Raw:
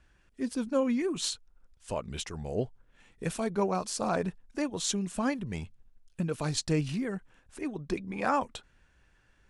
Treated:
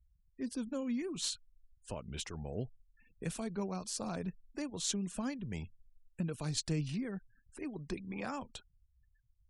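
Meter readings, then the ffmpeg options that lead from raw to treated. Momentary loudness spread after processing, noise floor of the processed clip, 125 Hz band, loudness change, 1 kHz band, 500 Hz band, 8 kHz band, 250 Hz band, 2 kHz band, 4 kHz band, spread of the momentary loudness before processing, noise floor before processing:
11 LU, -72 dBFS, -4.5 dB, -7.0 dB, -13.0 dB, -11.0 dB, -4.0 dB, -6.5 dB, -9.5 dB, -4.5 dB, 10 LU, -66 dBFS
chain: -filter_complex "[0:a]afftfilt=real='re*gte(hypot(re,im),0.00251)':imag='im*gte(hypot(re,im),0.00251)':win_size=1024:overlap=0.75,acrossover=split=250|3000[s0][s1][s2];[s1]acompressor=threshold=0.0112:ratio=3[s3];[s0][s3][s2]amix=inputs=3:normalize=0,volume=0.631"

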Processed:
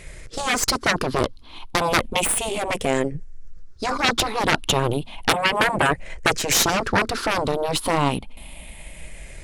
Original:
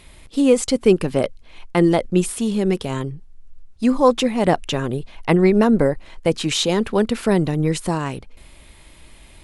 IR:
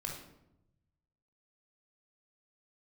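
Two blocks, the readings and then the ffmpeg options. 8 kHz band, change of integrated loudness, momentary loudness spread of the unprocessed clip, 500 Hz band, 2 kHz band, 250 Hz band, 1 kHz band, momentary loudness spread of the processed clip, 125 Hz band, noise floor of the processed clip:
+6.0 dB, -2.5 dB, 11 LU, -6.0 dB, +8.0 dB, -10.0 dB, +3.5 dB, 18 LU, -6.0 dB, -41 dBFS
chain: -af "afftfilt=real='re*pow(10,11/40*sin(2*PI*(0.53*log(max(b,1)*sr/1024/100)/log(2)-(-0.32)*(pts-256)/sr)))':imag='im*pow(10,11/40*sin(2*PI*(0.53*log(max(b,1)*sr/1024/100)/log(2)-(-0.32)*(pts-256)/sr)))':win_size=1024:overlap=0.75,aeval=exprs='0.944*(cos(1*acos(clip(val(0)/0.944,-1,1)))-cos(1*PI/2))+0.266*(cos(3*acos(clip(val(0)/0.944,-1,1)))-cos(3*PI/2))+0.473*(cos(6*acos(clip(val(0)/0.944,-1,1)))-cos(6*PI/2))+0.299*(cos(7*acos(clip(val(0)/0.944,-1,1)))-cos(7*PI/2))+0.0335*(cos(8*acos(clip(val(0)/0.944,-1,1)))-cos(8*PI/2))':c=same,afftfilt=real='re*lt(hypot(re,im),1.12)':imag='im*lt(hypot(re,im),1.12)':win_size=1024:overlap=0.75,volume=0.75"

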